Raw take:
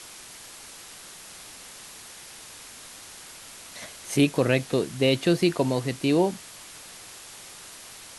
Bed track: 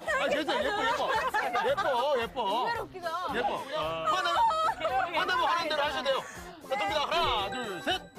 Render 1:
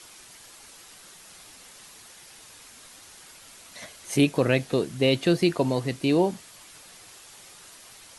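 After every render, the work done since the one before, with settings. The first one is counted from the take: noise reduction 6 dB, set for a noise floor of -45 dBFS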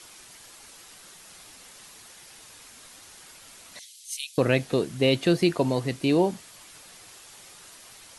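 3.79–4.38 s: inverse Chebyshev high-pass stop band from 730 Hz, stop band 70 dB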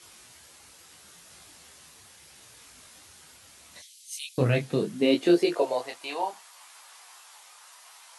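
high-pass sweep 70 Hz -> 900 Hz, 4.21–6.02 s; detune thickener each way 25 cents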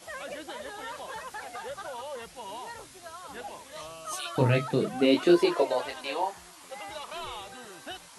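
add bed track -11 dB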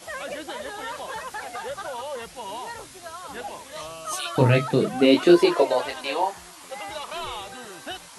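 trim +5.5 dB

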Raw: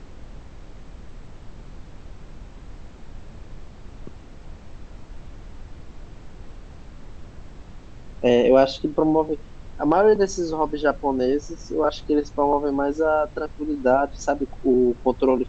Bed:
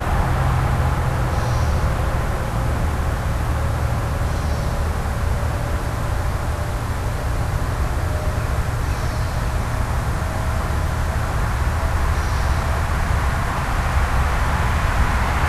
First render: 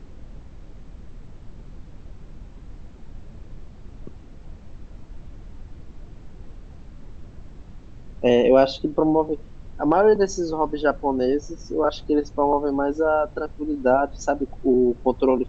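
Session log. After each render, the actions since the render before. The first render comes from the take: noise reduction 6 dB, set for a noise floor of -43 dBFS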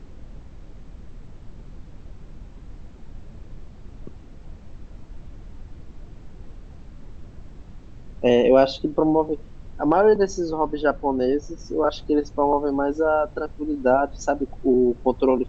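10.16–11.58 s: distance through air 52 m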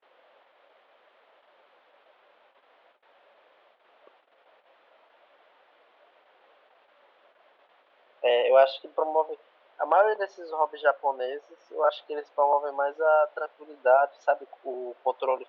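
gate -40 dBFS, range -25 dB; elliptic band-pass 570–3400 Hz, stop band 60 dB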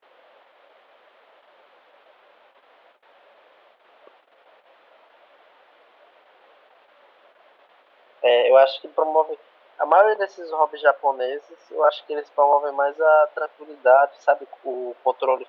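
trim +6 dB; peak limiter -3 dBFS, peak gain reduction 3 dB

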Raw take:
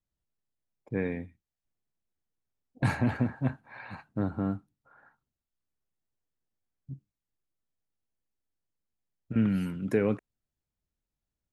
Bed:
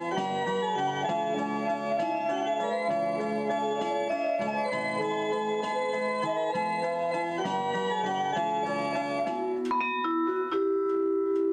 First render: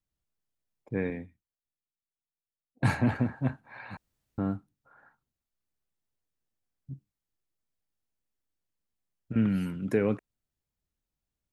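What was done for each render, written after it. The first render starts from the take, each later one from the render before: 1.10–3.15 s: three bands expanded up and down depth 40%; 3.97–4.38 s: room tone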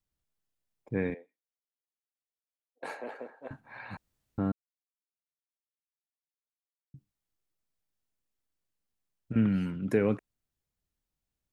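1.14–3.51 s: ladder high-pass 420 Hz, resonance 60%; 4.52–6.94 s: mute; 9.40–9.89 s: distance through air 73 m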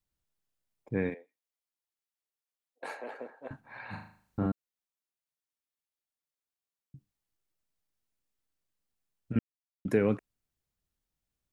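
1.09–3.10 s: bass shelf 220 Hz -9.5 dB; 3.85–4.46 s: flutter echo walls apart 6.6 m, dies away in 0.51 s; 9.39–9.85 s: mute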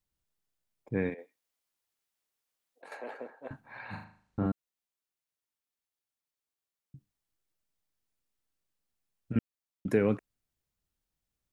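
1.18–2.92 s: compressor with a negative ratio -49 dBFS; 4.04–4.46 s: distance through air 61 m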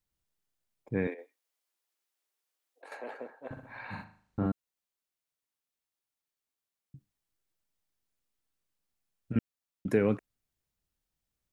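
1.07–2.92 s: steep high-pass 280 Hz; 3.46–4.02 s: flutter echo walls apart 10.6 m, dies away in 0.64 s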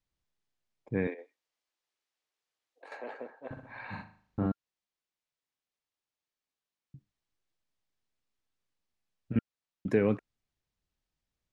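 low-pass 5.8 kHz 12 dB/octave; band-stop 1.4 kHz, Q 28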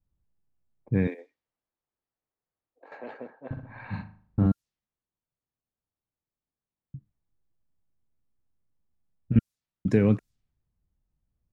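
level-controlled noise filter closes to 1.1 kHz, open at -29.5 dBFS; tone controls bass +12 dB, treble +12 dB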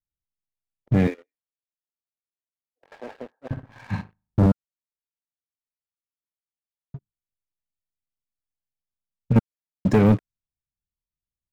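waveshaping leveller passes 3; upward expansion 1.5:1, over -36 dBFS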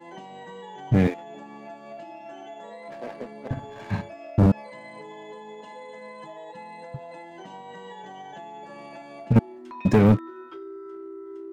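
add bed -12.5 dB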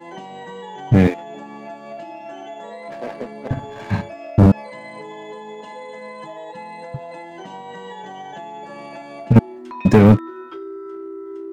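trim +6.5 dB

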